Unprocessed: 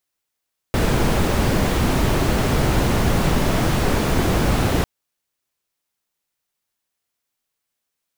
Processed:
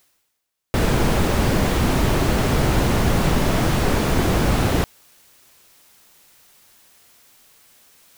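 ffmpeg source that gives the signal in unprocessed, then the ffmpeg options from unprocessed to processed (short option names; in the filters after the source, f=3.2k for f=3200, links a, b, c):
-f lavfi -i "anoisesrc=c=brown:a=0.624:d=4.1:r=44100:seed=1"
-af "areverse,acompressor=mode=upward:threshold=-31dB:ratio=2.5,areverse"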